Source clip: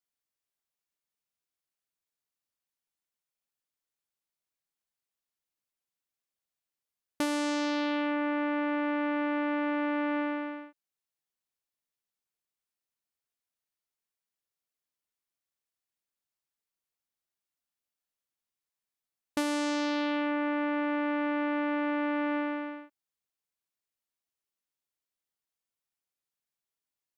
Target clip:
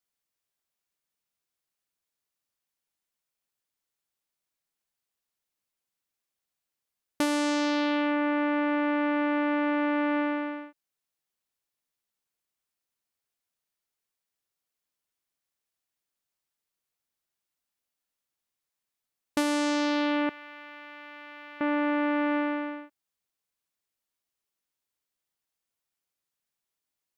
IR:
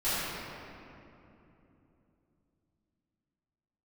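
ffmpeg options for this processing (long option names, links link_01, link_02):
-filter_complex "[0:a]asettb=1/sr,asplit=3[link_01][link_02][link_03];[link_01]atrim=end=20.294[link_04];[link_02]atrim=start=20.29:end=21.61,asetpts=PTS-STARTPTS,afade=type=in:duration=0.004:curve=qsin,afade=type=out:start_time=1.316:duration=0.004:curve=qsin,aderivative[link_05];[link_03]atrim=start=21.606[link_06];[link_04][link_05]acrossfade=duration=0.004:curve1=hsin:curve2=qsin[link_07];[link_07][link_06]acrossfade=duration=0.004:curve1=qsin:curve2=hsin,volume=3.5dB"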